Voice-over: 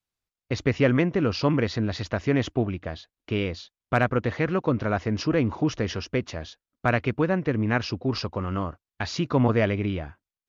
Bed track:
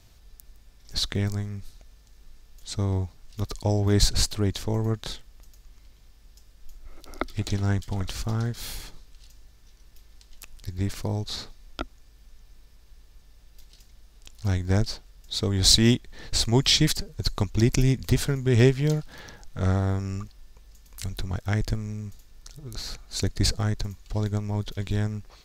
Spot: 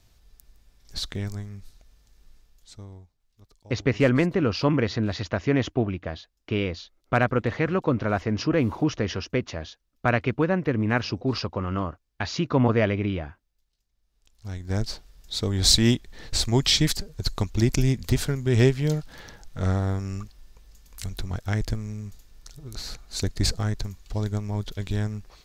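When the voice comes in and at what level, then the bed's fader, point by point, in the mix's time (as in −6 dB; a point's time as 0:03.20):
3.20 s, +0.5 dB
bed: 0:02.37 −4.5 dB
0:03.20 −25 dB
0:13.86 −25 dB
0:14.90 −0.5 dB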